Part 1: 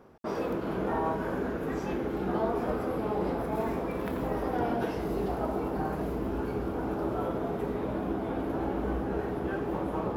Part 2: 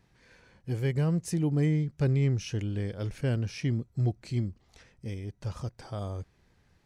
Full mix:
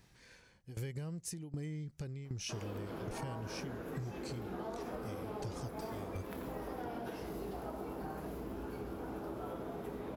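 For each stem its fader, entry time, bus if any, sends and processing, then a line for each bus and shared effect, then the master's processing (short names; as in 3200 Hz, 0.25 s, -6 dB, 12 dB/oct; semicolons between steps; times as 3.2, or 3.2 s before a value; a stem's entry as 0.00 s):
-9.5 dB, 2.25 s, no send, dry
+0.5 dB, 0.00 s, no send, compressor, threshold -30 dBFS, peak gain reduction 8.5 dB; tremolo saw down 1.3 Hz, depth 90%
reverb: off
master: high shelf 3800 Hz +9.5 dB; compressor, threshold -38 dBFS, peak gain reduction 9 dB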